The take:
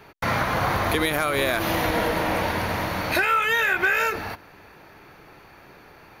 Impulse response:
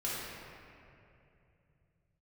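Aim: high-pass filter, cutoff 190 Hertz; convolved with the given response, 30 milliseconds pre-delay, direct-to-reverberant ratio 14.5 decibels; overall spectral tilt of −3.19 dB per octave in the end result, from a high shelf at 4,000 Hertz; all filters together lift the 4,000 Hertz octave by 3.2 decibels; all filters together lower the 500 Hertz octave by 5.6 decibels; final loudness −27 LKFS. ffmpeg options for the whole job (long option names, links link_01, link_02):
-filter_complex "[0:a]highpass=190,equalizer=frequency=500:width_type=o:gain=-7,highshelf=frequency=4000:gain=-8.5,equalizer=frequency=4000:width_type=o:gain=8.5,asplit=2[link_01][link_02];[1:a]atrim=start_sample=2205,adelay=30[link_03];[link_02][link_03]afir=irnorm=-1:irlink=0,volume=-20dB[link_04];[link_01][link_04]amix=inputs=2:normalize=0,volume=-3.5dB"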